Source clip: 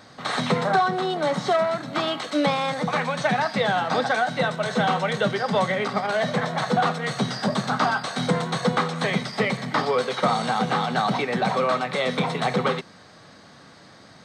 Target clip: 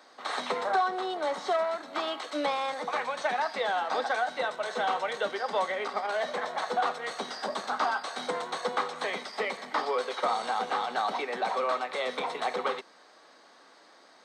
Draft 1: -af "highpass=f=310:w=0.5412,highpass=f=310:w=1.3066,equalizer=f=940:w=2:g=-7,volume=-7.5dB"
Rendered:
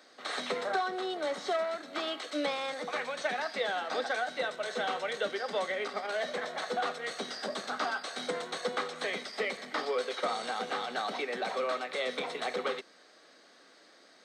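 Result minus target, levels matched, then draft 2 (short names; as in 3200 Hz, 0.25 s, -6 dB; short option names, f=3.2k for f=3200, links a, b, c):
1000 Hz band -3.0 dB
-af "highpass=f=310:w=0.5412,highpass=f=310:w=1.3066,equalizer=f=940:w=2:g=3.5,volume=-7.5dB"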